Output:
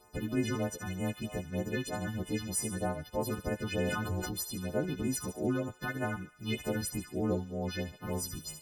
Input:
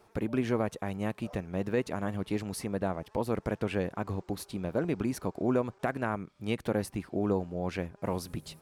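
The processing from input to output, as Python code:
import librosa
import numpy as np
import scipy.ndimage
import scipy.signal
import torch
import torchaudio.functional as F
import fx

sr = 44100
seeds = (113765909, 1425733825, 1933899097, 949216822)

y = fx.freq_snap(x, sr, grid_st=3)
y = fx.low_shelf(y, sr, hz=67.0, db=8.0)
y = fx.phaser_stages(y, sr, stages=6, low_hz=560.0, high_hz=4400.0, hz=3.2, feedback_pct=5)
y = fx.dynamic_eq(y, sr, hz=1100.0, q=2.0, threshold_db=-50.0, ratio=4.0, max_db=-5)
y = fx.echo_wet_highpass(y, sr, ms=73, feedback_pct=51, hz=1700.0, wet_db=-9.5)
y = fx.sustainer(y, sr, db_per_s=21.0, at=(3.79, 4.32))
y = y * 10.0 ** (-1.5 / 20.0)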